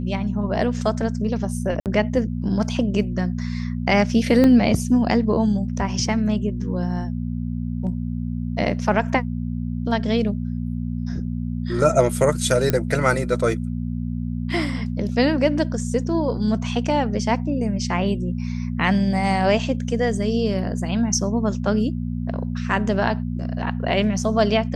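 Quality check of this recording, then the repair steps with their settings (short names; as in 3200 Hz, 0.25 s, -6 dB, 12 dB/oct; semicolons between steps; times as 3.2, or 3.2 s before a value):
hum 60 Hz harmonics 4 -26 dBFS
1.8–1.86 gap 58 ms
4.44 gap 2.3 ms
12.7 pop -6 dBFS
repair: de-click; de-hum 60 Hz, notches 4; interpolate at 1.8, 58 ms; interpolate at 4.44, 2.3 ms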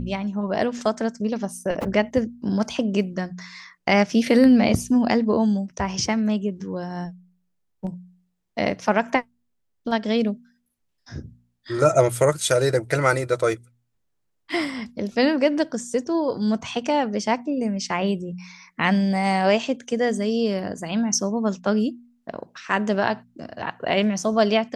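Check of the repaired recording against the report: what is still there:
none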